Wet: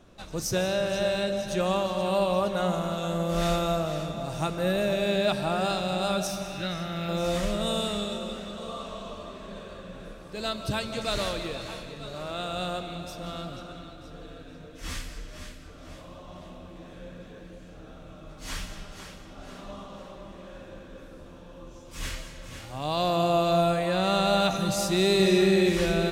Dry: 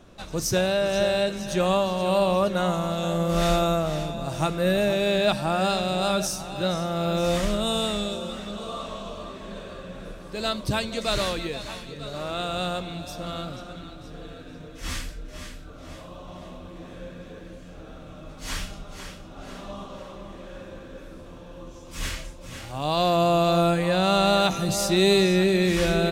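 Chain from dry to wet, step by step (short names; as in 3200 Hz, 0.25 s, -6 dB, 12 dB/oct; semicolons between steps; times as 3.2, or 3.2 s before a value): 6.27–7.09 graphic EQ 500/1000/2000/8000 Hz -8/-5/+8/-7 dB; 25.15–25.69 flutter echo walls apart 8 m, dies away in 0.76 s; reverb RT60 2.0 s, pre-delay 0.115 s, DRR 8.5 dB; gain -4 dB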